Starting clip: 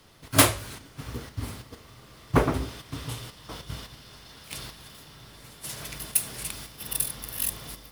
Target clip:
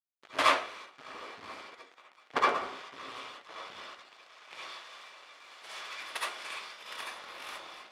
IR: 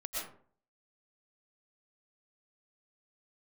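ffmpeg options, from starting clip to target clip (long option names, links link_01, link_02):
-filter_complex "[0:a]asettb=1/sr,asplit=3[link_01][link_02][link_03];[link_01]atrim=end=4.634[link_04];[link_02]atrim=start=4.63:end=6.95,asetpts=PTS-STARTPTS,afade=type=in:duration=0.004:curve=qsin,afade=type=out:start_time=2.316:duration=0.004:curve=qsin,tiltshelf=frequency=970:gain=-5.5[link_05];[link_03]atrim=start=6.946[link_06];[link_04][link_05]acrossfade=duration=0.004:curve1=hsin:curve2=qsin[link_07];[link_07][link_06]acrossfade=duration=0.004:curve1=qsin:curve2=hsin,asoftclip=type=tanh:threshold=-16.5dB,acrusher=bits=4:dc=4:mix=0:aa=0.000001,highpass=540,lowpass=3000[link_08];[1:a]atrim=start_sample=2205,asetrate=79380,aresample=44100[link_09];[link_08][link_09]afir=irnorm=-1:irlink=0,volume=7dB"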